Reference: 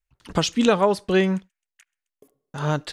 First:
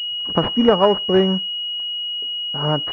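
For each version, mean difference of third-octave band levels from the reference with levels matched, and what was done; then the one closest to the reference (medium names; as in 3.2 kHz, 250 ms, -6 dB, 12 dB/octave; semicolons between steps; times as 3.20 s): 7.0 dB: high-pass 170 Hz 6 dB/octave; careless resampling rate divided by 2×, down none, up hold; class-D stage that switches slowly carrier 2.9 kHz; trim +5 dB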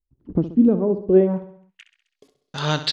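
10.0 dB: treble shelf 2.8 kHz +11 dB; low-pass sweep 310 Hz -> 4.3 kHz, 1.02–1.93 s; feedback delay 65 ms, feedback 53%, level -12.5 dB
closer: first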